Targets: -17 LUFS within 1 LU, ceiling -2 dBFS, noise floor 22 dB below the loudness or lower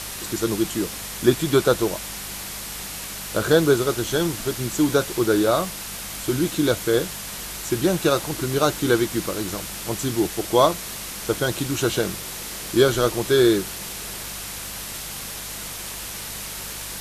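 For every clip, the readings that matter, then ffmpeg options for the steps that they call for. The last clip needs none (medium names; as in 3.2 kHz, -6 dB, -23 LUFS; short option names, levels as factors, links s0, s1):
hum 50 Hz; highest harmonic 200 Hz; hum level -43 dBFS; noise floor -34 dBFS; noise floor target -46 dBFS; loudness -23.5 LUFS; peak level -3.0 dBFS; loudness target -17.0 LUFS
-> -af "bandreject=f=50:t=h:w=4,bandreject=f=100:t=h:w=4,bandreject=f=150:t=h:w=4,bandreject=f=200:t=h:w=4"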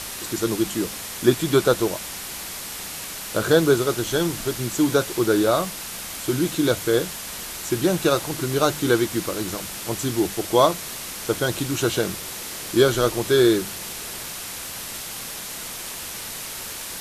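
hum not found; noise floor -34 dBFS; noise floor target -46 dBFS
-> -af "afftdn=nr=12:nf=-34"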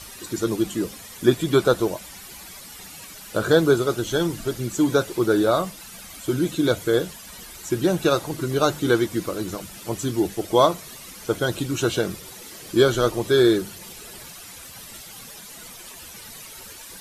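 noise floor -41 dBFS; noise floor target -45 dBFS
-> -af "afftdn=nr=6:nf=-41"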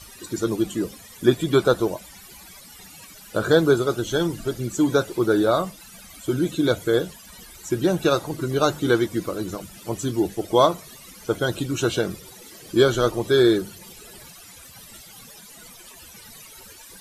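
noise floor -45 dBFS; loudness -22.5 LUFS; peak level -3.0 dBFS; loudness target -17.0 LUFS
-> -af "volume=1.88,alimiter=limit=0.794:level=0:latency=1"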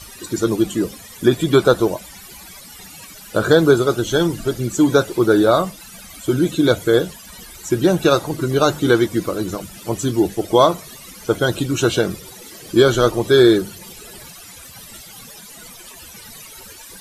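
loudness -17.5 LUFS; peak level -2.0 dBFS; noise floor -40 dBFS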